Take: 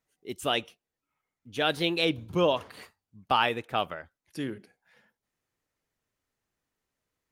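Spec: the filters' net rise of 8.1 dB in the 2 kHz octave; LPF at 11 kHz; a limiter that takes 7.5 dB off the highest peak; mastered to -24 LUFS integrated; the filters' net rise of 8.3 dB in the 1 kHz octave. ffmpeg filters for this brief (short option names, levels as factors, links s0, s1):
-af "lowpass=11000,equalizer=f=1000:t=o:g=8.5,equalizer=f=2000:t=o:g=8.5,volume=1.19,alimiter=limit=0.376:level=0:latency=1"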